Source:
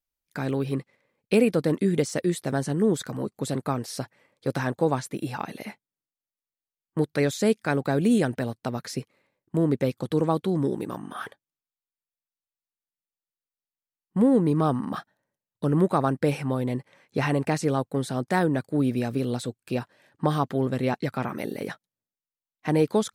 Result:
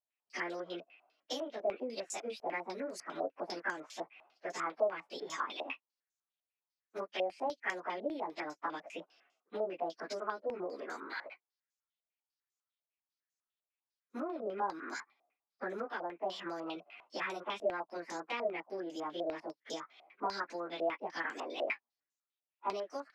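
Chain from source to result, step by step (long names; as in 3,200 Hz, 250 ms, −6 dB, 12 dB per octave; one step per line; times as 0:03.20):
phase-vocoder pitch shift without resampling +4.5 semitones
high-pass filter 250 Hz 24 dB per octave
low-shelf EQ 450 Hz −11.5 dB
downward compressor 6 to 1, threshold −41 dBFS, peak gain reduction 17 dB
low-pass on a step sequencer 10 Hz 660–6,800 Hz
level +2 dB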